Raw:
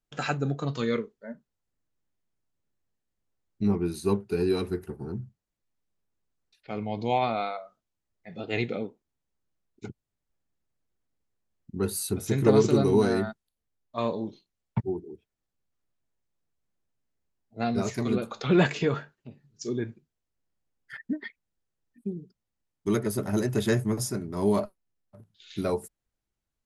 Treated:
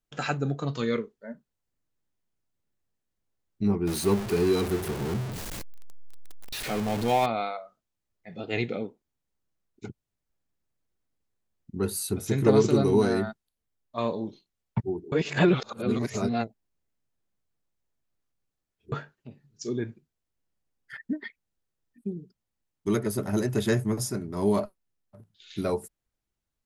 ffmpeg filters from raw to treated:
-filter_complex "[0:a]asettb=1/sr,asplit=3[s0][s1][s2];[s0]atrim=end=3.874[s3];[s1]atrim=start=3.87:end=7.26,asetpts=PTS-STARTPTS,afade=t=in:d=0.004:c=qsin,afade=t=out:st=3.386:d=0.004:c=qsin,aeval=exprs='val(0)+0.5*0.0376*sgn(val(0))':c=same[s4];[s2]atrim=start=7.256[s5];[s3][s4]acrossfade=d=0.004:c1=hsin:c2=qsin[s6];[s6][s5]acrossfade=d=0.004:c1=qsin:c2=hsin,asplit=3[s7][s8][s9];[s7]atrim=end=15.122[s10];[s8]atrim=start=15.118:end=18.922,asetpts=PTS-STARTPTS,areverse[s11];[s9]atrim=start=18.918[s12];[s10][s11]acrossfade=d=0.004:c1=hsin:c2=hsin[s13];[s13][s12]acrossfade=d=0.004:c1=hsin:c2=hsin"

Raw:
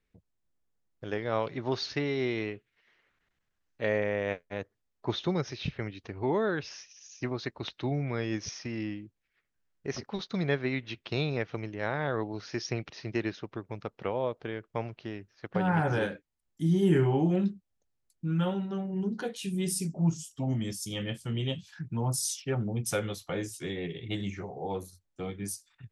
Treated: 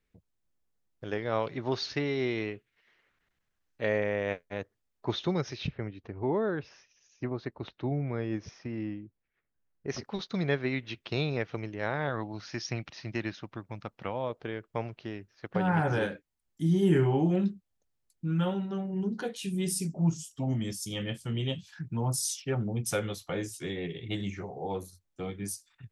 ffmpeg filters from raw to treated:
-filter_complex "[0:a]asplit=3[s0][s1][s2];[s0]afade=t=out:st=5.66:d=0.02[s3];[s1]lowpass=f=1100:p=1,afade=t=in:st=5.66:d=0.02,afade=t=out:st=9.88:d=0.02[s4];[s2]afade=t=in:st=9.88:d=0.02[s5];[s3][s4][s5]amix=inputs=3:normalize=0,asettb=1/sr,asplit=3[s6][s7][s8];[s6]atrim=end=12.094[s9];[s7]atrim=start=12.09:end=14.3,asetpts=PTS-STARTPTS,afade=t=in:d=0.004:c=qsin,afade=t=out:st=2.206:d=0.004:c=qsin,equalizer=f=420:w=2.8:g=-9[s10];[s8]atrim=start=14.296[s11];[s9][s10]acrossfade=d=0.004:c1=hsin:c2=qsin[s12];[s12][s11]acrossfade=d=0.004:c1=qsin:c2=hsin"

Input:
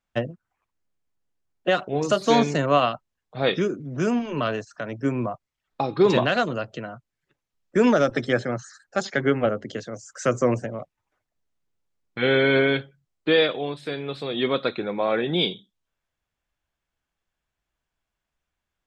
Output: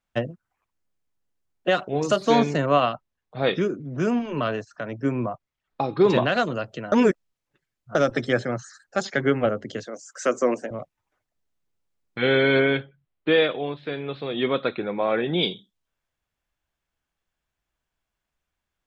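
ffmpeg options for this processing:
-filter_complex "[0:a]asettb=1/sr,asplit=3[s0][s1][s2];[s0]atrim=end=2.164[s3];[s1]atrim=start=2.16:end=6.36,asetpts=PTS-STARTPTS,afade=t=in:d=0.004:c=qsin,afade=t=out:st=4.196:d=0.004:c=qsin,highshelf=f=5400:g=-8.5[s4];[s2]atrim=start=6.356[s5];[s3][s4]acrossfade=d=0.004:c1=hsin:c2=qsin[s6];[s6][s5]acrossfade=d=0.004:c1=qsin:c2=hsin,asettb=1/sr,asplit=3[s7][s8][s9];[s7]atrim=end=9.864[s10];[s8]atrim=start=9.86:end=10.71,asetpts=PTS-STARTPTS,afade=t=in:d=0.004:c=qsin,afade=t=out:st=0.846:d=0.004:c=qsin,highpass=f=240:w=0.5412,highpass=f=240:w=1.3066[s11];[s9]atrim=start=10.706[s12];[s10][s11]acrossfade=d=0.004:c1=hsin:c2=qsin[s13];[s13][s12]acrossfade=d=0.004:c1=qsin:c2=hsin,asettb=1/sr,asplit=3[s14][s15][s16];[s14]atrim=end=12.604[s17];[s15]atrim=start=12.6:end=15.43,asetpts=PTS-STARTPTS,afade=t=in:d=0.004:c=qsin,afade=t=out:st=2.826:d=0.004:c=qsin,lowpass=f=3500:w=0.5412,lowpass=f=3500:w=1.3066[s18];[s16]atrim=start=15.426[s19];[s17][s18]acrossfade=d=0.004:c1=hsin:c2=qsin[s20];[s20][s19]acrossfade=d=0.004:c1=qsin:c2=hsin,asplit=3[s21][s22][s23];[s21]atrim=end=6.922[s24];[s22]atrim=start=6.918:end=7.952,asetpts=PTS-STARTPTS,areverse[s25];[s23]atrim=start=7.948[s26];[s24][s25]acrossfade=d=0.004:c1=hsin:c2=hsin[s27];[s27][s26]acrossfade=d=0.004:c1=hsin:c2=hsin"

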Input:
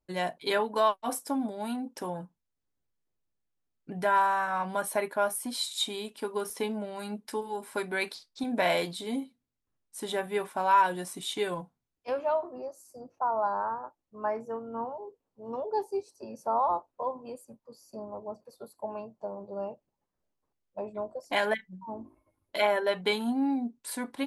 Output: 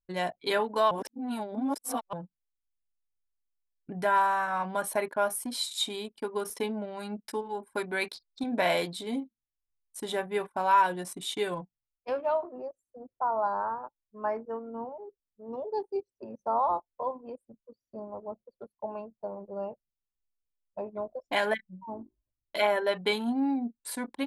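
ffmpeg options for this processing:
-filter_complex "[0:a]asettb=1/sr,asplit=3[s0][s1][s2];[s0]atrim=end=14.704[s3];[s1]atrim=start=14.7:end=15.96,asetpts=PTS-STARTPTS,afade=t=in:d=0.004:c=qsin,afade=t=out:st=1.256:d=0.004:c=qsin,equalizer=f=1300:w=1.1:g=-8.5[s4];[s2]atrim=start=15.956[s5];[s3][s4]acrossfade=d=0.004:c1=hsin:c2=qsin[s6];[s6][s5]acrossfade=d=0.004:c1=qsin:c2=hsin,asplit=3[s7][s8][s9];[s7]atrim=end=0.912[s10];[s8]atrim=start=0.908:end=2.132,asetpts=PTS-STARTPTS,areverse[s11];[s9]atrim=start=2.128[s12];[s10][s11]acrossfade=d=0.004:c1=hsin:c2=hsin[s13];[s13][s12]acrossfade=d=0.004:c1=hsin:c2=hsin,anlmdn=0.0631"

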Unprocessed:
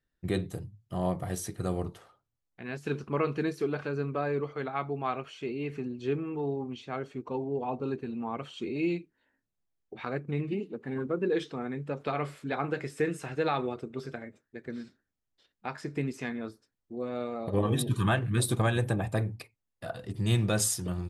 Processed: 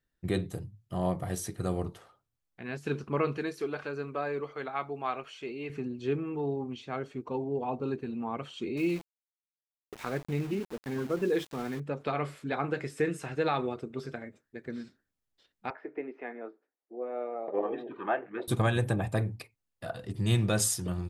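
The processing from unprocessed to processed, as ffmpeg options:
-filter_complex "[0:a]asettb=1/sr,asplit=3[s0][s1][s2];[s0]atrim=end=3.374[s3];[s1]atrim=start=3.37:end=5.7,asetpts=PTS-STARTPTS,afade=t=in:d=0.004:c=qsin,afade=t=out:st=2.326:d=0.004:c=qsin,equalizer=f=110:t=o:w=2.9:g=-9.5[s4];[s2]atrim=start=5.696[s5];[s3][s4]acrossfade=d=0.004:c1=hsin:c2=qsin[s6];[s6][s5]acrossfade=d=0.004:c1=qsin:c2=hsin,asettb=1/sr,asplit=3[s7][s8][s9];[s7]atrim=end=8.774[s10];[s8]atrim=start=8.77:end=11.8,asetpts=PTS-STARTPTS,afade=t=in:d=0.004:c=qsin,afade=t=out:st=3.026:d=0.004:c=qsin,aeval=exprs='val(0)*gte(abs(val(0)),0.00841)':c=same[s11];[s9]atrim=start=11.796[s12];[s10][s11]acrossfade=d=0.004:c1=hsin:c2=qsin[s13];[s13][s12]acrossfade=d=0.004:c1=qsin:c2=hsin,asettb=1/sr,asplit=3[s14][s15][s16];[s14]atrim=end=15.704[s17];[s15]atrim=start=15.7:end=18.48,asetpts=PTS-STARTPTS,afade=t=in:d=0.004:c=qsin,afade=t=out:st=2.776:d=0.004:c=qsin,highpass=f=340:w=0.5412,highpass=f=340:w=1.3066,equalizer=f=740:t=q:w=4:g=4,equalizer=f=1100:t=q:w=4:g=-6,equalizer=f=1600:t=q:w=4:g=-4,lowpass=f=2000:w=0.5412,lowpass=f=2000:w=1.3066[s18];[s16]atrim=start=18.476[s19];[s17][s18]acrossfade=d=0.004:c1=hsin:c2=qsin[s20];[s20][s19]acrossfade=d=0.004:c1=qsin:c2=hsin"

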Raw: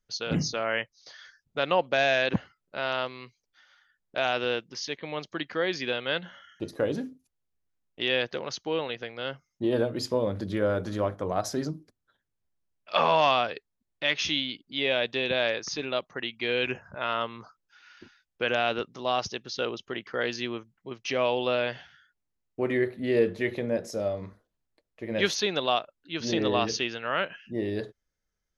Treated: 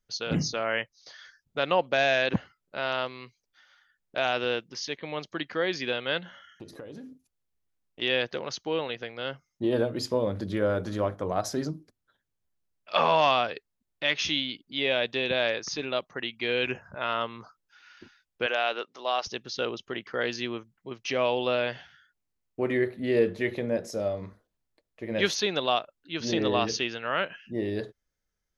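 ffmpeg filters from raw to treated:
-filter_complex "[0:a]asettb=1/sr,asplit=3[s0][s1][s2];[s0]atrim=end=6.224[s3];[s1]atrim=start=6.22:end=8.02,asetpts=PTS-STARTPTS,afade=t=in:d=0.004:c=qsin,afade=t=out:st=1.796:d=0.004:c=qsin,acompressor=threshold=0.0112:ratio=8:attack=3.2:release=140:knee=1:detection=peak[s4];[s2]atrim=start=8.016[s5];[s3][s4]acrossfade=d=0.004:c1=hsin:c2=qsin[s6];[s6][s5]acrossfade=d=0.004:c1=qsin:c2=hsin,asettb=1/sr,asplit=3[s7][s8][s9];[s7]atrim=end=18.464[s10];[s8]atrim=start=18.46:end=19.27,asetpts=PTS-STARTPTS,afade=t=in:d=0.004:c=qsin,afade=t=out:st=0.806:d=0.004:c=qsin,highpass=490,lowpass=6700[s11];[s9]atrim=start=19.266[s12];[s10][s11]acrossfade=d=0.004:c1=hsin:c2=qsin[s13];[s13][s12]acrossfade=d=0.004:c1=qsin:c2=hsin"

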